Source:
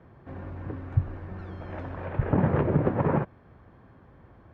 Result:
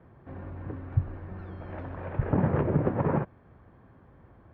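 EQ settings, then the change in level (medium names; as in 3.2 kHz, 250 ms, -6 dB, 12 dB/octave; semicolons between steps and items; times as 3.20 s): distance through air 180 m; -1.5 dB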